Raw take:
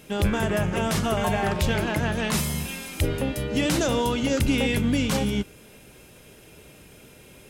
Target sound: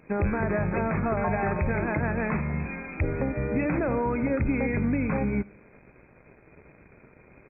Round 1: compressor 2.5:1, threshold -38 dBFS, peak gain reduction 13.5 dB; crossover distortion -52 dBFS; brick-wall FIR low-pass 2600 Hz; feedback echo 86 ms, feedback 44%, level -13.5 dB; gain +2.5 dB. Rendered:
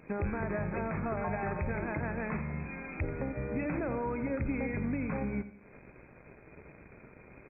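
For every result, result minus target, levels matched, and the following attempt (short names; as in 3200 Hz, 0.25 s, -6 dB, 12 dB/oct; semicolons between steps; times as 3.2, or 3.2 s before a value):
compressor: peak gain reduction +7 dB; echo-to-direct +10.5 dB
compressor 2.5:1, threshold -26 dBFS, peak gain reduction 6 dB; crossover distortion -52 dBFS; brick-wall FIR low-pass 2600 Hz; feedback echo 86 ms, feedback 44%, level -13.5 dB; gain +2.5 dB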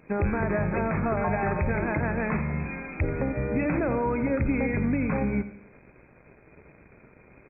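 echo-to-direct +10.5 dB
compressor 2.5:1, threshold -26 dBFS, peak gain reduction 6 dB; crossover distortion -52 dBFS; brick-wall FIR low-pass 2600 Hz; feedback echo 86 ms, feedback 44%, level -24 dB; gain +2.5 dB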